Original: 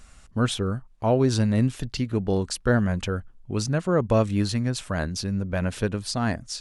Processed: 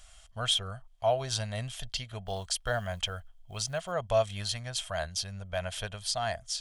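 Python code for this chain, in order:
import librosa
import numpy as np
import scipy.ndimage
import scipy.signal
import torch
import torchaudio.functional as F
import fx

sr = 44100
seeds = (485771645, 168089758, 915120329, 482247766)

y = fx.quant_float(x, sr, bits=6, at=(2.26, 3.92))
y = fx.tone_stack(y, sr, knobs='10-0-10')
y = fx.small_body(y, sr, hz=(670.0, 3200.0), ring_ms=25, db=16)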